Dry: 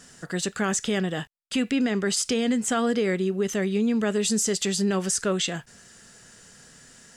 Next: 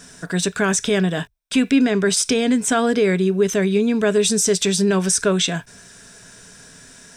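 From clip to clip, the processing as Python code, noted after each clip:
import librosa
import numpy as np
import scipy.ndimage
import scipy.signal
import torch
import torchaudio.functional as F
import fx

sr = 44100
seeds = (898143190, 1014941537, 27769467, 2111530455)

y = fx.ripple_eq(x, sr, per_octave=1.6, db=7)
y = F.gain(torch.from_numpy(y), 6.0).numpy()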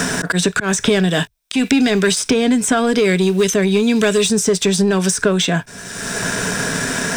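y = fx.leveller(x, sr, passes=1)
y = fx.auto_swell(y, sr, attack_ms=319.0)
y = fx.band_squash(y, sr, depth_pct=100)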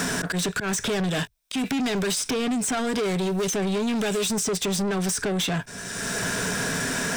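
y = 10.0 ** (-20.0 / 20.0) * np.tanh(x / 10.0 ** (-20.0 / 20.0))
y = F.gain(torch.from_numpy(y), -2.5).numpy()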